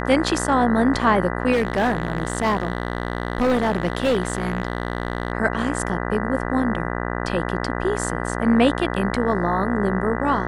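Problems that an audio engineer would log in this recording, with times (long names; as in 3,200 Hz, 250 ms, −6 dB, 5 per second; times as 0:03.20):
mains buzz 60 Hz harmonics 33 −26 dBFS
0:01.52–0:05.32: clipping −15 dBFS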